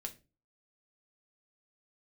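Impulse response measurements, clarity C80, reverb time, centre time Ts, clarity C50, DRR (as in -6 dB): 22.5 dB, 0.30 s, 6 ms, 16.0 dB, 3.5 dB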